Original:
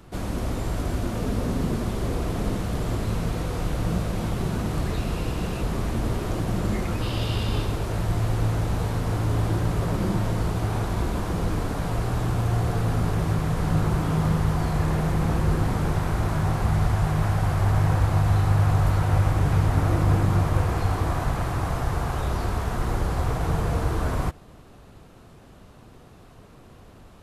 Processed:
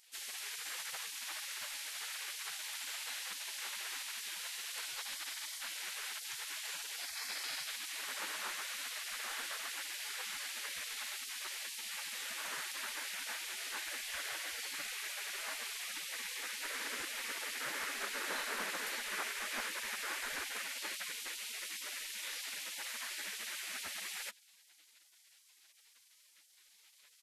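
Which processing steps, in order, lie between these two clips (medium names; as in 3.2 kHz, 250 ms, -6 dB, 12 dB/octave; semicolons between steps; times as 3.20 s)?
speakerphone echo 210 ms, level -25 dB; spectral gate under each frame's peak -30 dB weak; trim +1.5 dB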